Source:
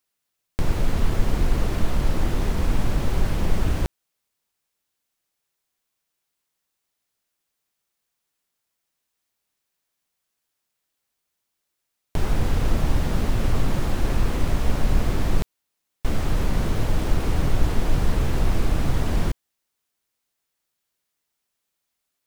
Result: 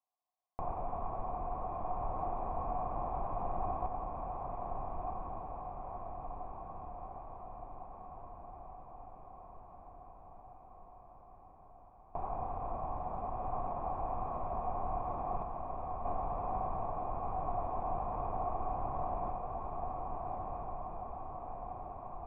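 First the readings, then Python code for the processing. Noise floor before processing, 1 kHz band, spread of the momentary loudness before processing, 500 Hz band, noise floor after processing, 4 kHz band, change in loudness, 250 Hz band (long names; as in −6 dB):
−80 dBFS, +1.5 dB, 4 LU, −7.0 dB, −57 dBFS, below −40 dB, −14.0 dB, −18.5 dB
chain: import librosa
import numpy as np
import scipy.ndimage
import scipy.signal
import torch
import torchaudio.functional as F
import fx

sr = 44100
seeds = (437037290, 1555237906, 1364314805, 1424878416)

y = fx.wiener(x, sr, points=9)
y = fx.formant_cascade(y, sr, vowel='a')
y = fx.rider(y, sr, range_db=10, speed_s=0.5)
y = fx.echo_diffused(y, sr, ms=1375, feedback_pct=66, wet_db=-3)
y = F.gain(torch.from_numpy(y), 5.5).numpy()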